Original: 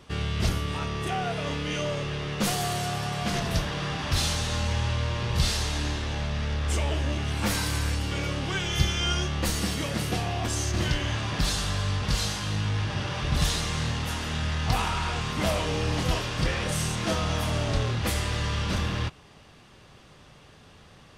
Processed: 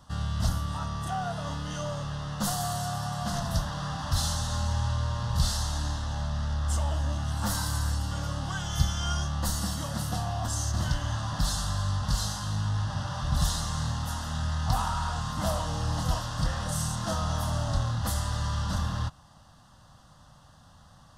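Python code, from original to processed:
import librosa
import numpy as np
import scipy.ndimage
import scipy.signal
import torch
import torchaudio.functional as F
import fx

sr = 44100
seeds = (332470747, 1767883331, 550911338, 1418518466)

y = fx.fixed_phaser(x, sr, hz=970.0, stages=4)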